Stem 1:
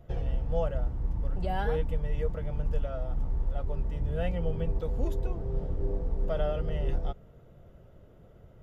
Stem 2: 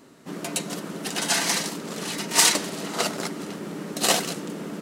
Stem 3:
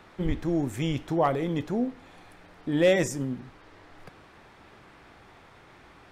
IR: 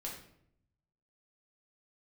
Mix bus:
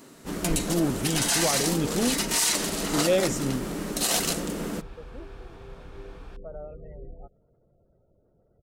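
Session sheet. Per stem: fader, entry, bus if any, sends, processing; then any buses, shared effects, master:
−11.5 dB, 0.15 s, no send, gate on every frequency bin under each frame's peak −30 dB strong; Chebyshev low-pass with heavy ripple 2,600 Hz, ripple 3 dB; parametric band 330 Hz +5 dB 2.1 octaves
+1.5 dB, 0.00 s, no send, high-shelf EQ 6,100 Hz +8 dB
+1.5 dB, 0.25 s, no send, notch filter 2,000 Hz, Q 6.5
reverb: not used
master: brickwall limiter −13.5 dBFS, peak gain reduction 16 dB

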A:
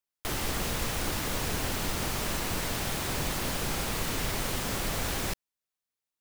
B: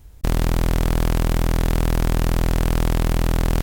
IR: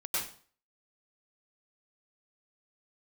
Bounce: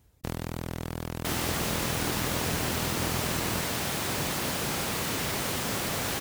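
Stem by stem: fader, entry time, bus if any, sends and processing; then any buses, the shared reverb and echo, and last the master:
+2.0 dB, 1.00 s, no send, no processing
−9.5 dB, 0.00 s, no send, reverb reduction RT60 0.96 s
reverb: not used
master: high-pass filter 94 Hz 12 dB per octave

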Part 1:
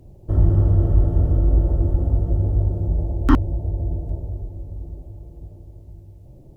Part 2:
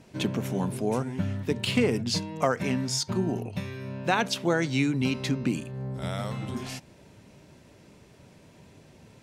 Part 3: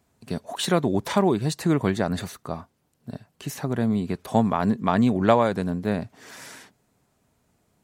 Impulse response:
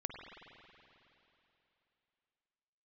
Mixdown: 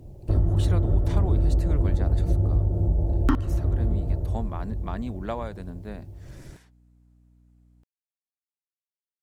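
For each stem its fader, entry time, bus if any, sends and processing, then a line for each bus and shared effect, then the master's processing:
0.0 dB, 0.00 s, send −12.5 dB, downward compressor 10 to 1, threshold −18 dBFS, peak gain reduction 11.5 dB
muted
−13.5 dB, 0.00 s, no send, mains hum 60 Hz, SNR 19 dB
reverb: on, RT60 3.1 s, pre-delay 45 ms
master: no processing

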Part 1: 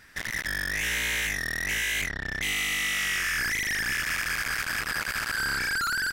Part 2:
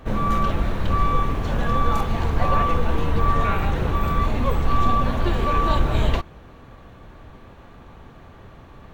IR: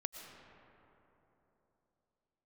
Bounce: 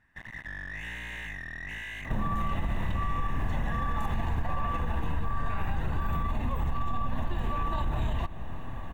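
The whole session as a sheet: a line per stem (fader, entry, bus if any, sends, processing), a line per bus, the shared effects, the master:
−5.5 dB, 0.00 s, send −5.5 dB, low-pass filter 1,200 Hz 6 dB per octave; soft clipping −32.5 dBFS, distortion −16 dB; expander for the loud parts 1.5 to 1, over −53 dBFS
+1.5 dB, 2.05 s, send −13 dB, brickwall limiter −17.5 dBFS, peak gain reduction 10.5 dB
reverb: on, RT60 3.5 s, pre-delay 75 ms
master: parametric band 4,900 Hz −12.5 dB 0.48 octaves; comb filter 1.1 ms, depth 51%; downward compressor 3 to 1, threshold −28 dBFS, peak gain reduction 11 dB

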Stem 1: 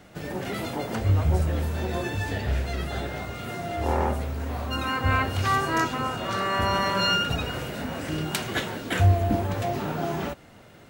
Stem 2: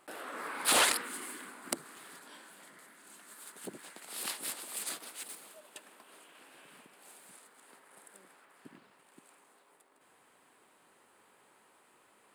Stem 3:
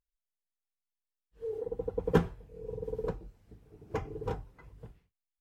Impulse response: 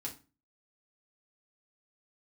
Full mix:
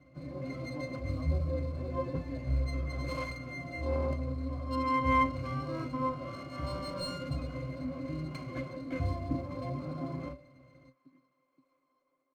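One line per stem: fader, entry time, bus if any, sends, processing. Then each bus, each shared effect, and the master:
+3.0 dB, 0.00 s, no send, hum removal 193.5 Hz, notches 31; noise that follows the level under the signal 17 dB
+1.5 dB, 2.40 s, no send, no processing
+0.5 dB, 0.00 s, no send, no processing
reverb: not used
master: high-pass filter 120 Hz 6 dB per octave; resonances in every octave C, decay 0.13 s; windowed peak hold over 3 samples

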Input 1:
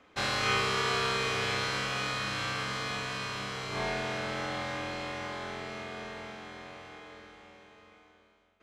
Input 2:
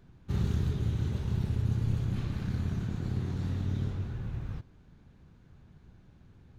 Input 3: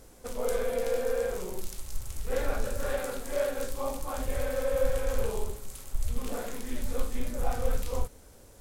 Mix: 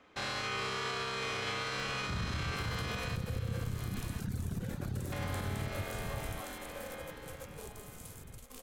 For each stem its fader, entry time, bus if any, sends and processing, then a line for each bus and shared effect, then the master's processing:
−1.5 dB, 0.00 s, muted 0:03.16–0:05.12, no send, echo send −13 dB, no processing
+0.5 dB, 1.80 s, no send, no echo send, reverb reduction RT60 1.7 s; upward compression, threshold −42 dBFS
−14.0 dB, 2.30 s, no send, echo send −19 dB, compressor whose output falls as the input rises −29 dBFS, ratio −0.5; spectral tilt +2 dB per octave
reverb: not used
echo: single-tap delay 1,044 ms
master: brickwall limiter −27.5 dBFS, peak gain reduction 9.5 dB

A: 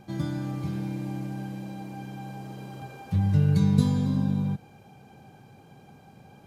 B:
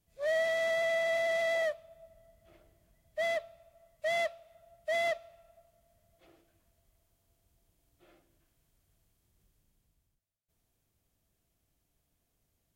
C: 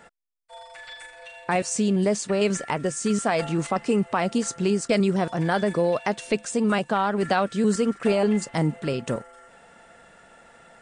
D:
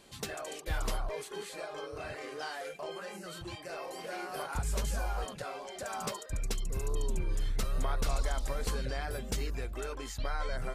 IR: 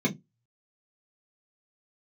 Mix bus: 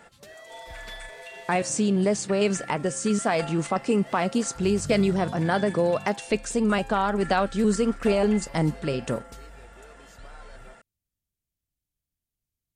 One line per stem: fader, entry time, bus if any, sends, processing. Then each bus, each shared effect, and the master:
−16.0 dB, 1.50 s, no send, no processing
−8.5 dB, 0.00 s, no send, parametric band 790 Hz −12 dB 2.8 octaves
−0.5 dB, 0.00 s, no send, hum removal 268.6 Hz, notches 20
−11.5 dB, 0.00 s, no send, no processing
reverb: not used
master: no processing

